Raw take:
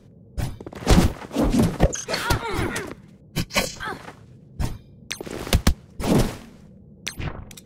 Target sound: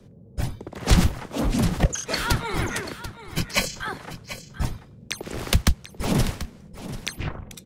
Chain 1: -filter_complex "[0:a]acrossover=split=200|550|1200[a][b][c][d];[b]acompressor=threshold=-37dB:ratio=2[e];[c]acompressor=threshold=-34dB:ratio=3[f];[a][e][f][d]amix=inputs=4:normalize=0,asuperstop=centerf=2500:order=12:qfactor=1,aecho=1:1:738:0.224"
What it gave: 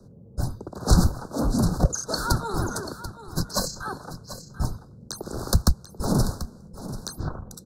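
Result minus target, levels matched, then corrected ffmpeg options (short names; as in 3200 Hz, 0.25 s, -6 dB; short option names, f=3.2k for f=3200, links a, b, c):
2000 Hz band -7.5 dB
-filter_complex "[0:a]acrossover=split=200|550|1200[a][b][c][d];[b]acompressor=threshold=-37dB:ratio=2[e];[c]acompressor=threshold=-34dB:ratio=3[f];[a][e][f][d]amix=inputs=4:normalize=0,aecho=1:1:738:0.224"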